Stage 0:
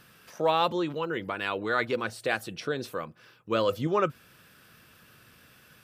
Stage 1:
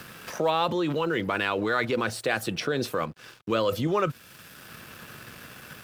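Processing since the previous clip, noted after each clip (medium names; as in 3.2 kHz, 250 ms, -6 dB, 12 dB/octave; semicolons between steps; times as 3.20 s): in parallel at -1 dB: compressor with a negative ratio -35 dBFS, ratio -1; on the sum: crossover distortion -51.5 dBFS; three bands compressed up and down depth 40%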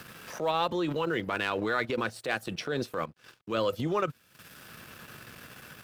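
transient shaper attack -7 dB, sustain -11 dB; trim -2 dB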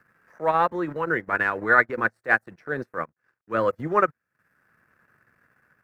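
in parallel at -5 dB: small samples zeroed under -39.5 dBFS; on the sum: resonant high shelf 2.4 kHz -10.5 dB, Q 3; upward expansion 2.5:1, over -35 dBFS; trim +6 dB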